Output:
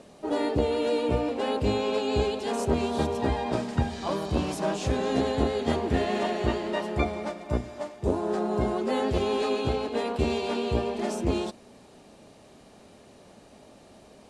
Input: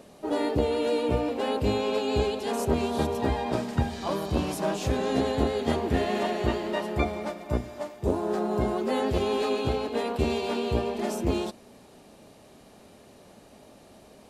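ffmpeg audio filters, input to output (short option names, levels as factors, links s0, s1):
-af "lowpass=f=10000:w=0.5412,lowpass=f=10000:w=1.3066"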